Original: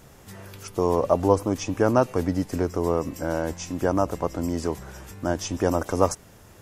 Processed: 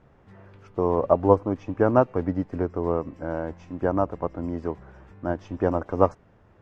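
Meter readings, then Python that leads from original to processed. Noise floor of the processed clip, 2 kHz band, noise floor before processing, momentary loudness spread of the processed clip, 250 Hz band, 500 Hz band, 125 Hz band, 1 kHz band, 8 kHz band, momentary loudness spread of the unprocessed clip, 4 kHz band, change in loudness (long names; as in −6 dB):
−57 dBFS, −3.5 dB, −50 dBFS, 12 LU, −1.0 dB, 0.0 dB, −1.0 dB, 0.0 dB, below −25 dB, 13 LU, below −15 dB, −0.5 dB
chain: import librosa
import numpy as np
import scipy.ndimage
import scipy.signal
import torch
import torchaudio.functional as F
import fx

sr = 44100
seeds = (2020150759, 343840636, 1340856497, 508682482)

y = scipy.signal.sosfilt(scipy.signal.butter(2, 1800.0, 'lowpass', fs=sr, output='sos'), x)
y = fx.upward_expand(y, sr, threshold_db=-32.0, expansion=1.5)
y = y * 10.0 ** (2.5 / 20.0)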